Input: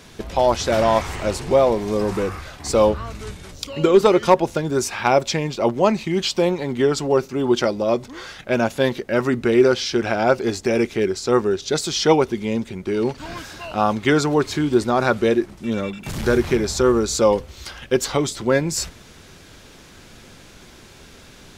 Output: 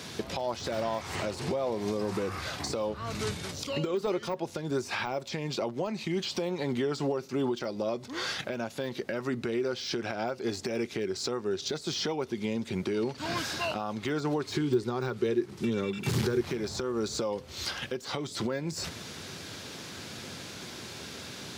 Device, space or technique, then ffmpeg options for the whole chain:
broadcast voice chain: -filter_complex "[0:a]highpass=f=90:w=0.5412,highpass=f=90:w=1.3066,deesser=0.7,acompressor=threshold=0.0501:ratio=4,equalizer=f=4500:t=o:w=0.81:g=4.5,alimiter=limit=0.0668:level=0:latency=1:release=392,asettb=1/sr,asplit=3[s0][s1][s2];[s0]atrim=end=14.544[s3];[s1]atrim=start=14.54:end=16.41,asetpts=PTS-STARTPTS,afade=t=in:d=0.004:c=qsin,afade=t=out:st=1.866:d=0.004:c=qsin,equalizer=f=125:t=o:w=0.33:g=8,equalizer=f=400:t=o:w=0.33:g=9,equalizer=f=630:t=o:w=0.33:g=-9[s4];[s2]atrim=start=16.406[s5];[s3][s4]acrossfade=d=0.004:c1=hsin:c2=qsin[s6];[s6][s5]acrossfade=d=0.004:c1=qsin:c2=hsin,volume=1.33"

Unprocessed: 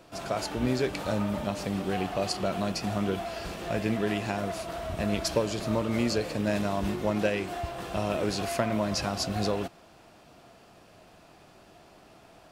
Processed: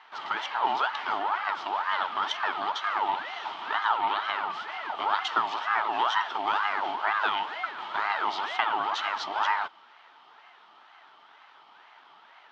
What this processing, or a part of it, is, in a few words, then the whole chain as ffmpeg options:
voice changer toy: -filter_complex "[0:a]asettb=1/sr,asplit=3[s0][s1][s2];[s0]atrim=end=3.984[s3];[s1]atrim=start=3.98:end=4.5,asetpts=PTS-STARTPTS,afade=t=in:d=0.004:c=qsin,afade=t=out:st=0.516:d=0.004:c=qsin,lowpass=5200[s4];[s2]atrim=start=4.496[s5];[s3][s4]acrossfade=d=0.004:c1=hsin:c2=qsin[s6];[s6][s5]acrossfade=d=0.004:c1=qsin:c2=hsin,aeval=exprs='val(0)*sin(2*PI*960*n/s+960*0.5/2.1*sin(2*PI*2.1*n/s))':c=same,highpass=480,equalizer=f=510:t=q:w=4:g=-9,equalizer=f=890:t=q:w=4:g=10,equalizer=f=1300:t=q:w=4:g=6,equalizer=f=3100:t=q:w=4:g=9,lowpass=f=4500:w=0.5412,lowpass=f=4500:w=1.3066"

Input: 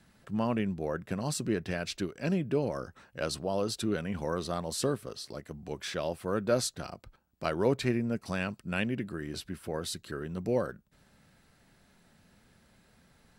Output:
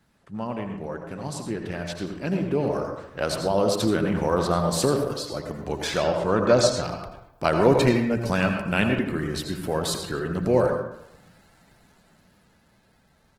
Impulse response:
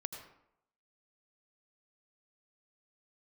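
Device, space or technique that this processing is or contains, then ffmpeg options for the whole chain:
speakerphone in a meeting room: -filter_complex "[0:a]asettb=1/sr,asplit=3[s0][s1][s2];[s0]atrim=end=5.964[s3];[s1]atrim=start=5.96:end=6.84,asetpts=PTS-STARTPTS,afade=t=in:d=0.004:c=qsin,afade=t=out:st=0.876:d=0.004:c=qsin,lowpass=f=7700:w=0.5412,lowpass=f=7700:w=1.3066[s4];[s2]atrim=start=6.836[s5];[s3][s4]acrossfade=d=0.004:c1=hsin:c2=qsin[s6];[s6][s5]acrossfade=d=0.004:c1=qsin:c2=hsin,equalizer=f=870:t=o:w=0.87:g=4,asettb=1/sr,asplit=3[s7][s8][s9];[s7]atrim=end=0.854[s10];[s8]atrim=start=0.85:end=1.27,asetpts=PTS-STARTPTS,afade=t=in:d=0.004:c=qsin,afade=t=out:st=0.416:d=0.004:c=qsin,aecho=1:1:7.3:0.4,atrim=end_sample=18522[s11];[s9]atrim=start=1.266[s12];[s10][s11]acrossfade=d=0.004:c1=hsin:c2=qsin[s13];[s13][s12]acrossfade=d=0.004:c1=qsin:c2=hsin,asplit=2[s14][s15];[s15]adelay=135,lowpass=f=4400:p=1,volume=0.126,asplit=2[s16][s17];[s17]adelay=135,lowpass=f=4400:p=1,volume=0.27[s18];[s14][s16][s18]amix=inputs=3:normalize=0[s19];[1:a]atrim=start_sample=2205[s20];[s19][s20]afir=irnorm=-1:irlink=0,asplit=2[s21][s22];[s22]adelay=110,highpass=300,lowpass=3400,asoftclip=type=hard:threshold=0.0668,volume=0.1[s23];[s21][s23]amix=inputs=2:normalize=0,dynaudnorm=f=600:g=9:m=3.55" -ar 48000 -c:a libopus -b:a 16k

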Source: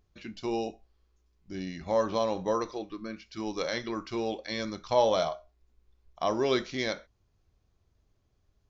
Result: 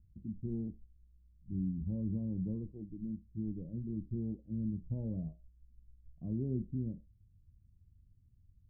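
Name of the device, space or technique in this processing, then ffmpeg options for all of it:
the neighbour's flat through the wall: -af "lowpass=f=210:w=0.5412,lowpass=f=210:w=1.3066,equalizer=f=95:t=o:w=0.87:g=4,volume=1.78"

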